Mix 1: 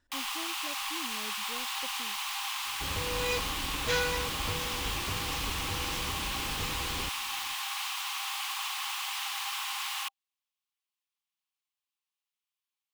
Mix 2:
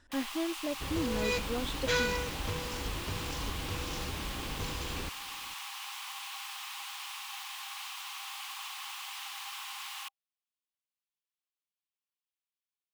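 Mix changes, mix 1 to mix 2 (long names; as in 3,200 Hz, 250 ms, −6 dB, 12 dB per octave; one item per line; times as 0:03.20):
speech +11.0 dB
first sound −7.0 dB
second sound: entry −2.00 s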